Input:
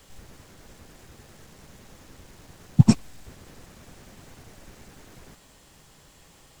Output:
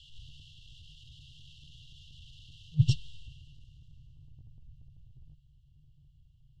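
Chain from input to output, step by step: FFT band-reject 160–2700 Hz; transient shaper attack -7 dB, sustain +1 dB; low-pass sweep 3200 Hz -> 820 Hz, 3.07–4.44

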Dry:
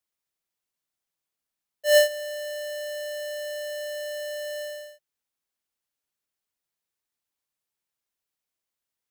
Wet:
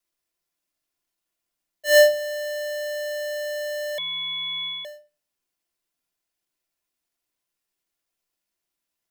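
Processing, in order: companded quantiser 8-bit; reverb RT60 0.35 s, pre-delay 3 ms, DRR 0 dB; 3.98–4.85 inverted band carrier 4000 Hz

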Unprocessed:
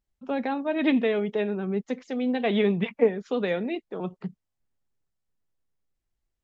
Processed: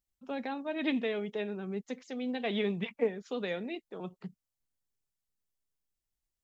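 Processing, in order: high shelf 3700 Hz +11.5 dB; gain -9 dB

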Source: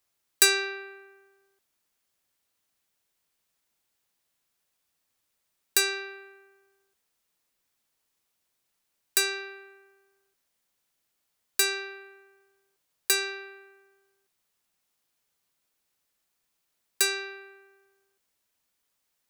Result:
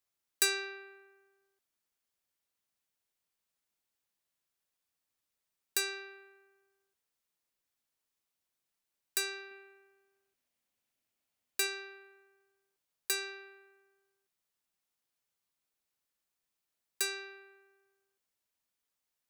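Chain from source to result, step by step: 9.51–11.67 fifteen-band EQ 100 Hz +6 dB, 250 Hz +7 dB, 630 Hz +4 dB, 2500 Hz +4 dB; gain -9 dB

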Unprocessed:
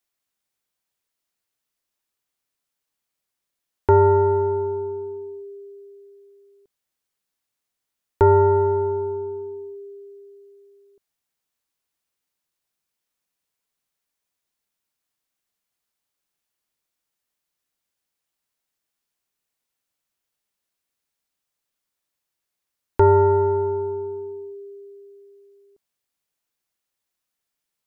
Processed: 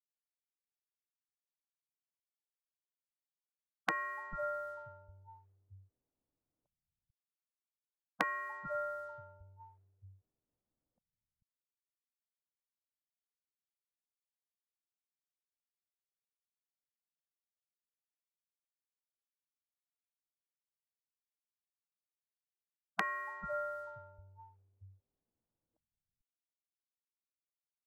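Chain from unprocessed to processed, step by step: spectral gate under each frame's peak -25 dB weak; low-pass opened by the level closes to 340 Hz, open at -47 dBFS; bands offset in time highs, lows 0.44 s, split 170 Hz; gain +8.5 dB

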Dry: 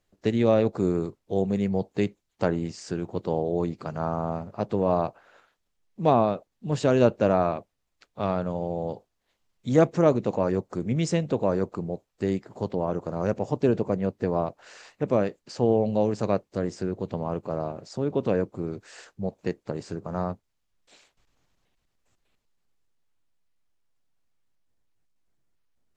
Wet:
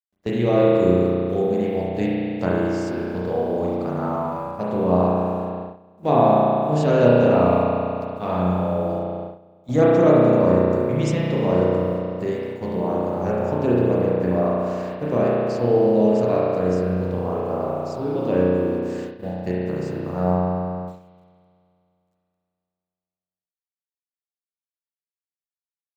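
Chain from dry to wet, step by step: requantised 10-bit, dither none; spring tank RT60 2.7 s, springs 33 ms, chirp 40 ms, DRR -7 dB; gate -28 dBFS, range -14 dB; gain -2 dB

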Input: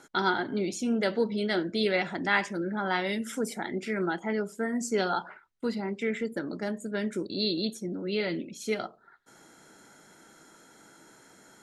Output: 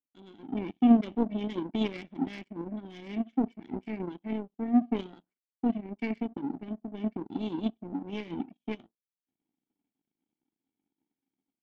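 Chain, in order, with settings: vocal tract filter i; power-law curve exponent 2; AGC gain up to 15.5 dB

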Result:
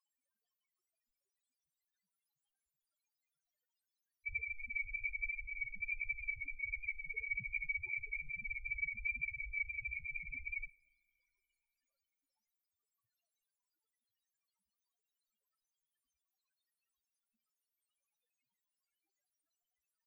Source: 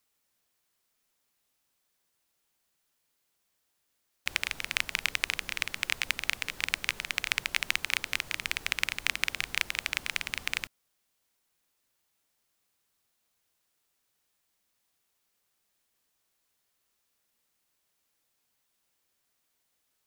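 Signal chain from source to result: 4.74–5.37 octaver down 2 oct, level -5 dB; loudest bins only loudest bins 2; two-slope reverb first 0.62 s, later 2.8 s, DRR 18 dB; gain +8 dB

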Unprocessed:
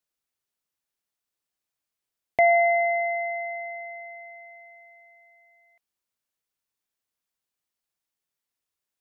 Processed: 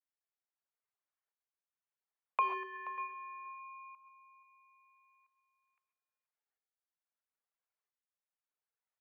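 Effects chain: 2.41–2.98 half-wave gain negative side -7 dB; reverb removal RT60 1.5 s; tremolo saw up 0.76 Hz, depth 75%; compressor 2.5:1, threshold -34 dBFS, peak gain reduction 10.5 dB; LPF 1300 Hz 12 dB/oct; frequency shift +380 Hz; HPF 940 Hz 6 dB/oct; on a send: echo 0.478 s -17 dB; on the sum: non-linear reverb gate 0.16 s rising, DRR 7.5 dB; gain +4 dB

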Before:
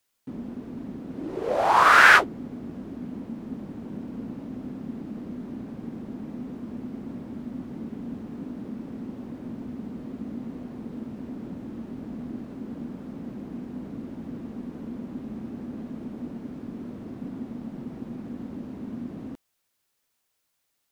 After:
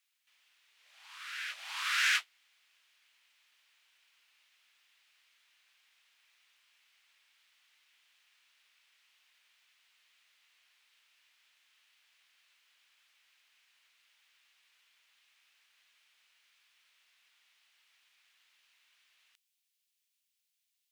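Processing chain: ladder high-pass 2100 Hz, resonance 30%; on a send: reverse echo 0.652 s -13.5 dB; on the sum: core saturation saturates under 3800 Hz

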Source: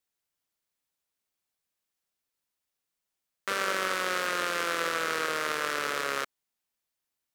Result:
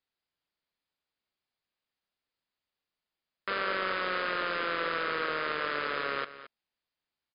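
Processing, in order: soft clip -19.5 dBFS, distortion -14 dB; brick-wall FIR low-pass 5100 Hz; echo 0.221 s -14.5 dB

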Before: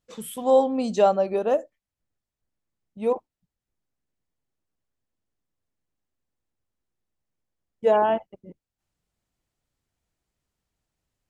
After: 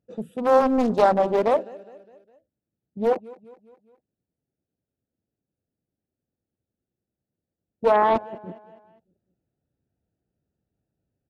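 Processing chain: Wiener smoothing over 41 samples; HPF 91 Hz 12 dB/oct; in parallel at -2 dB: negative-ratio compressor -26 dBFS, ratio -1; on the sum: feedback echo 0.205 s, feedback 51%, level -21 dB; Doppler distortion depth 0.65 ms

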